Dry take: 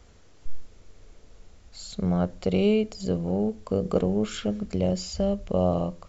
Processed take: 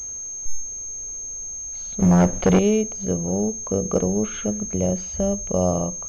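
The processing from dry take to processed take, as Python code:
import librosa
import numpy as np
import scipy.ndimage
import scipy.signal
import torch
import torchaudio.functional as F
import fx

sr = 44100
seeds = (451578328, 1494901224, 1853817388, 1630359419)

y = fx.leveller(x, sr, passes=3, at=(2.0, 2.59))
y = fx.pwm(y, sr, carrier_hz=6400.0)
y = F.gain(torch.from_numpy(y), 2.5).numpy()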